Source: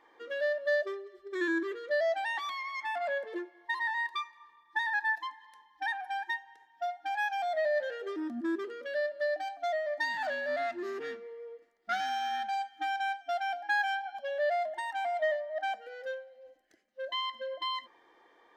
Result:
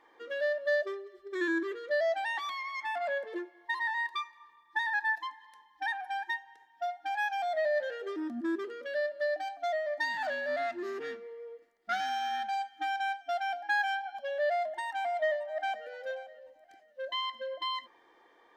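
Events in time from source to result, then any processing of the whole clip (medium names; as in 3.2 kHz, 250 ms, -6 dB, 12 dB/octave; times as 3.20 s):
14.87–15.86 s: echo throw 530 ms, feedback 35%, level -17 dB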